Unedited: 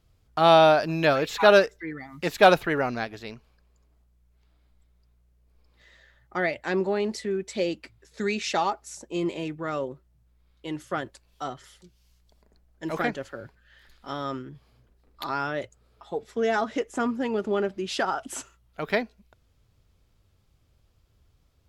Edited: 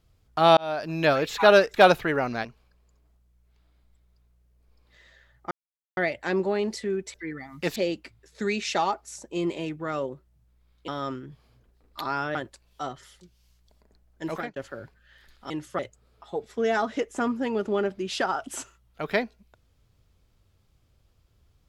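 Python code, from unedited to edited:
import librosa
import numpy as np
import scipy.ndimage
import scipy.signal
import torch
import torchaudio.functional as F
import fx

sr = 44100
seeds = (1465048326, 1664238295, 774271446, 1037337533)

y = fx.edit(x, sr, fx.fade_in_span(start_s=0.57, length_s=0.5),
    fx.move(start_s=1.74, length_s=0.62, to_s=7.55),
    fx.cut(start_s=3.07, length_s=0.25),
    fx.insert_silence(at_s=6.38, length_s=0.46),
    fx.swap(start_s=10.67, length_s=0.29, other_s=14.11, other_length_s=1.47),
    fx.fade_out_span(start_s=12.88, length_s=0.29), tone=tone)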